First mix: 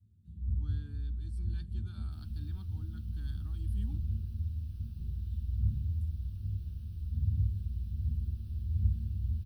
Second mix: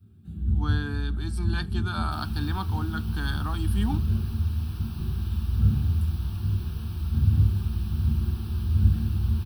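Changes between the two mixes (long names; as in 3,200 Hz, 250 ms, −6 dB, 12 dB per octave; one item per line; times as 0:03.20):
first sound: add parametric band 5,000 Hz −8 dB 1.5 octaves
second sound: send −6.0 dB
master: remove guitar amp tone stack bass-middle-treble 10-0-1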